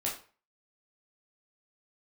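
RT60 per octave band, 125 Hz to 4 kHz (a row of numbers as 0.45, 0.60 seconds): 0.40, 0.35, 0.40, 0.40, 0.35, 0.30 seconds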